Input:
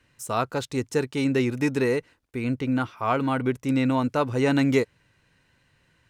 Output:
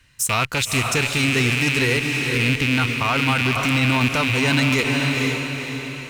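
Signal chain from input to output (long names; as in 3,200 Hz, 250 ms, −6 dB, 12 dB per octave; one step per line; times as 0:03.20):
loose part that buzzes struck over −36 dBFS, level −20 dBFS
low-shelf EQ 88 Hz +11 dB
leveller curve on the samples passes 1
guitar amp tone stack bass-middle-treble 5-5-5
on a send: feedback delay with all-pass diffusion 491 ms, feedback 47%, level −7 dB
on the sum: boost into a limiter +28 dB
level −9 dB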